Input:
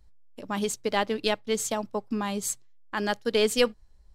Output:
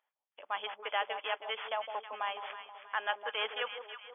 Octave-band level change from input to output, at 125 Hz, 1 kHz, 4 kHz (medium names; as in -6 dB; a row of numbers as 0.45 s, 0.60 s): under -40 dB, -3.0 dB, -6.5 dB